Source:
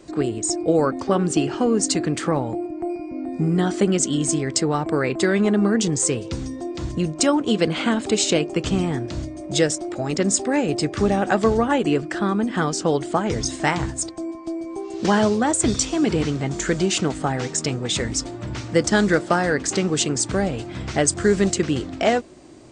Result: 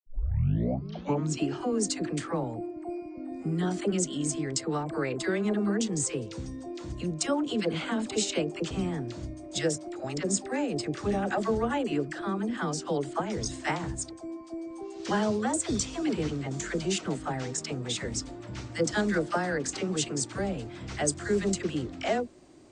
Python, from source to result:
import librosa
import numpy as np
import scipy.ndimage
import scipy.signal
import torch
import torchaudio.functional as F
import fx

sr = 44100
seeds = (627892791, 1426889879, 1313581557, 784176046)

y = fx.tape_start_head(x, sr, length_s=1.43)
y = fx.dispersion(y, sr, late='lows', ms=66.0, hz=640.0)
y = y * 10.0 ** (-9.0 / 20.0)